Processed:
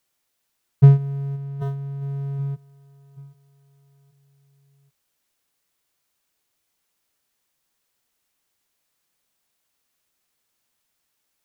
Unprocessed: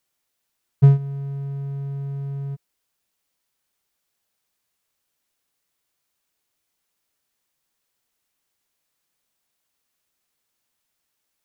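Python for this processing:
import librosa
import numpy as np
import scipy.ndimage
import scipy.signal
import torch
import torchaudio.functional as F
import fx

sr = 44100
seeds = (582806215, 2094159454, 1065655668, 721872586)

p1 = x + fx.echo_feedback(x, sr, ms=781, feedback_pct=45, wet_db=-20.0, dry=0)
p2 = fx.over_compress(p1, sr, threshold_db=-36.0, ratio=-1.0, at=(1.35, 2.01), fade=0.02)
y = p2 * 10.0 ** (2.0 / 20.0)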